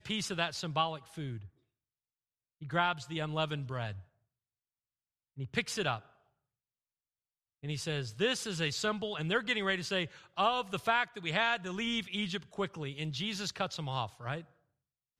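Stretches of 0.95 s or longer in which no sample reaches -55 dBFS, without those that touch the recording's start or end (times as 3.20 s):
1.49–2.61 s
4.05–5.37 s
6.10–7.63 s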